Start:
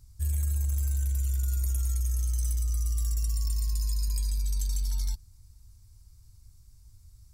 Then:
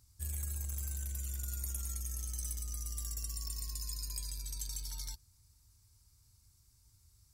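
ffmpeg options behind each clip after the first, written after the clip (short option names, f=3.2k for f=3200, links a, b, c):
-af "highpass=f=120:p=1,lowshelf=f=420:g=-4.5,volume=-2dB"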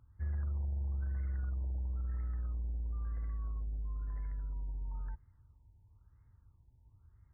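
-af "afftfilt=real='re*lt(b*sr/1024,940*pow(2200/940,0.5+0.5*sin(2*PI*1*pts/sr)))':imag='im*lt(b*sr/1024,940*pow(2200/940,0.5+0.5*sin(2*PI*1*pts/sr)))':win_size=1024:overlap=0.75,volume=4.5dB"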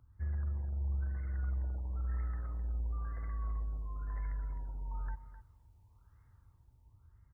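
-filter_complex "[0:a]acrossover=split=510[a][b];[b]dynaudnorm=f=650:g=5:m=8dB[c];[a][c]amix=inputs=2:normalize=0,aecho=1:1:258:0.237"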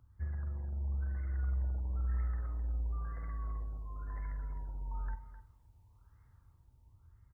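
-filter_complex "[0:a]asplit=2[a][b];[b]adelay=48,volume=-11dB[c];[a][c]amix=inputs=2:normalize=0"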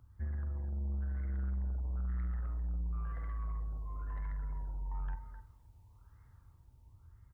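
-af "asoftclip=type=tanh:threshold=-35dB,volume=3dB"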